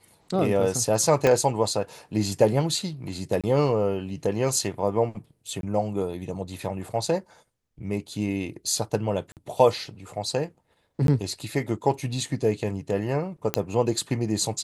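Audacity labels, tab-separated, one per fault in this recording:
1.270000	1.270000	click −8 dBFS
3.410000	3.440000	drop-out 26 ms
5.610000	5.630000	drop-out 22 ms
9.320000	9.370000	drop-out 48 ms
11.070000	11.080000	drop-out 12 ms
13.540000	13.540000	click −6 dBFS

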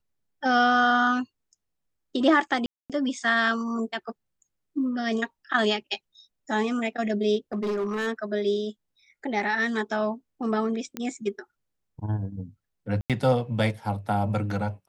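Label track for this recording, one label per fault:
2.660000	2.900000	drop-out 237 ms
7.530000	8.080000	clipping −24 dBFS
10.970000	10.970000	click −16 dBFS
13.010000	13.100000	drop-out 87 ms

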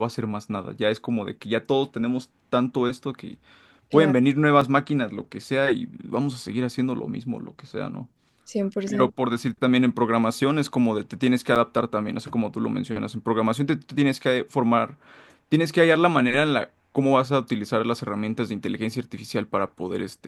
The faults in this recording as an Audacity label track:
4.610000	4.610000	drop-out 4 ms
11.550000	11.560000	drop-out 7.4 ms

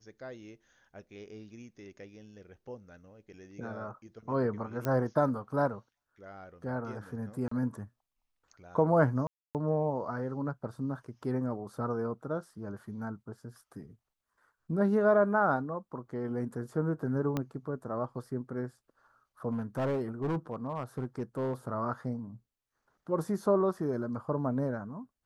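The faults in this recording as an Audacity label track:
4.850000	4.850000	click −18 dBFS
7.480000	7.510000	drop-out 34 ms
9.270000	9.550000	drop-out 278 ms
17.370000	17.370000	click −18 dBFS
19.520000	21.530000	clipping −27.5 dBFS

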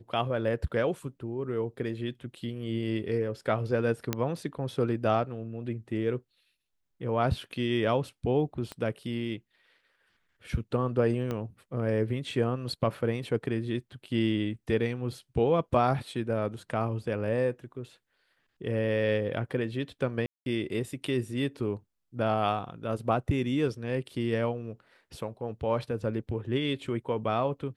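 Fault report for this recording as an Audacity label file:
4.130000	4.130000	click −12 dBFS
8.720000	8.720000	click −23 dBFS
11.310000	11.310000	click −20 dBFS
20.260000	20.460000	drop-out 201 ms

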